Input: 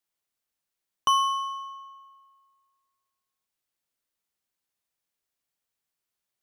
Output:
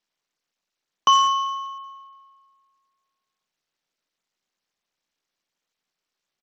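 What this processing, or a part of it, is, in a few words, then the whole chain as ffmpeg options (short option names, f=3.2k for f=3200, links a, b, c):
Bluetooth headset: -af "highpass=f=140:w=0.5412,highpass=f=140:w=1.3066,aresample=16000,aresample=44100,volume=6dB" -ar 32000 -c:a sbc -b:a 64k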